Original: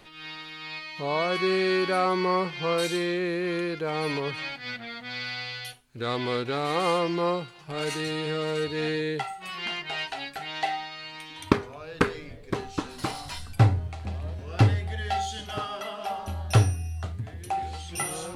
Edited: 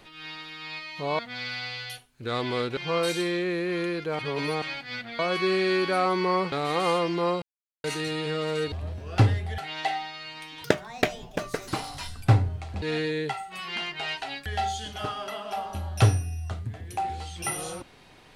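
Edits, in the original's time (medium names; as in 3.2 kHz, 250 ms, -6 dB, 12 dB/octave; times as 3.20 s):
1.19–2.52 s: swap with 4.94–6.52 s
3.94–4.37 s: reverse
7.42–7.84 s: mute
8.72–10.36 s: swap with 14.13–14.99 s
11.42–12.99 s: speed 151%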